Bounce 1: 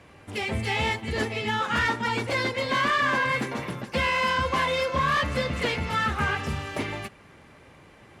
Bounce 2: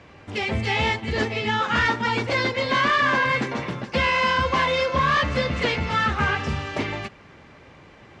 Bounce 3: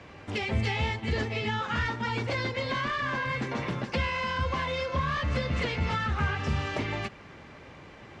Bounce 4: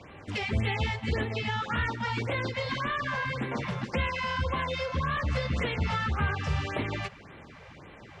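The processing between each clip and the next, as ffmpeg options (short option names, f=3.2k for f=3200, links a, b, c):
-af "lowpass=f=6.6k:w=0.5412,lowpass=f=6.6k:w=1.3066,volume=3.5dB"
-filter_complex "[0:a]acrossover=split=140[a][b];[b]acompressor=threshold=-29dB:ratio=6[c];[a][c]amix=inputs=2:normalize=0"
-af "afftfilt=real='re*(1-between(b*sr/1024,260*pow(6200/260,0.5+0.5*sin(2*PI*1.8*pts/sr))/1.41,260*pow(6200/260,0.5+0.5*sin(2*PI*1.8*pts/sr))*1.41))':imag='im*(1-between(b*sr/1024,260*pow(6200/260,0.5+0.5*sin(2*PI*1.8*pts/sr))/1.41,260*pow(6200/260,0.5+0.5*sin(2*PI*1.8*pts/sr))*1.41))':win_size=1024:overlap=0.75"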